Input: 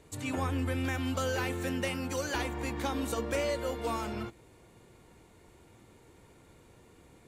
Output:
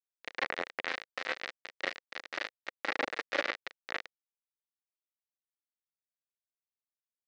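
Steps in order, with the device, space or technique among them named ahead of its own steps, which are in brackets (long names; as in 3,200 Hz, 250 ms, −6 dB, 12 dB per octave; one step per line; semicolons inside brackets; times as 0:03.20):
0:03.40–0:03.99: low-pass filter 5,200 Hz 24 dB per octave
flutter between parallel walls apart 6.4 metres, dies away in 0.46 s
hand-held game console (bit reduction 4 bits; loudspeaker in its box 440–4,100 Hz, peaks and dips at 510 Hz +3 dB, 950 Hz −6 dB, 1,900 Hz +7 dB, 3,200 Hz −4 dB)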